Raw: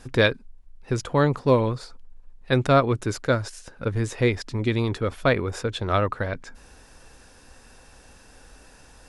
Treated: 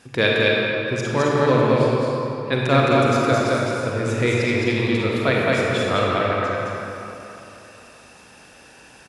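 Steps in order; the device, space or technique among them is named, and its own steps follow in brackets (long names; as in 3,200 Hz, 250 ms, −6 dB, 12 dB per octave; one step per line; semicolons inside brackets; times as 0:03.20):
stadium PA (high-pass filter 120 Hz 12 dB per octave; parametric band 2,600 Hz +5.5 dB 0.88 octaves; loudspeakers that aren't time-aligned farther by 74 metres −2 dB, 90 metres −11 dB; convolution reverb RT60 3.2 s, pre-delay 34 ms, DRR −2.5 dB)
level −2 dB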